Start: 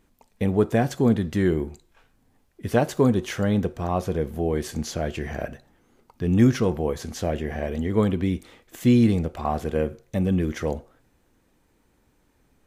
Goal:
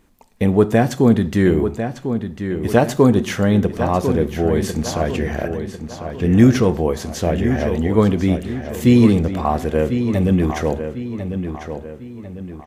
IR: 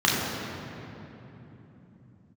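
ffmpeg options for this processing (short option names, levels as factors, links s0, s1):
-filter_complex "[0:a]asplit=2[s0][s1];[s1]adelay=1048,lowpass=f=4600:p=1,volume=0.376,asplit=2[s2][s3];[s3]adelay=1048,lowpass=f=4600:p=1,volume=0.42,asplit=2[s4][s5];[s5]adelay=1048,lowpass=f=4600:p=1,volume=0.42,asplit=2[s6][s7];[s7]adelay=1048,lowpass=f=4600:p=1,volume=0.42,asplit=2[s8][s9];[s9]adelay=1048,lowpass=f=4600:p=1,volume=0.42[s10];[s0][s2][s4][s6][s8][s10]amix=inputs=6:normalize=0,asplit=2[s11][s12];[1:a]atrim=start_sample=2205,afade=t=out:st=0.18:d=0.01,atrim=end_sample=8379[s13];[s12][s13]afir=irnorm=-1:irlink=0,volume=0.0224[s14];[s11][s14]amix=inputs=2:normalize=0,volume=2"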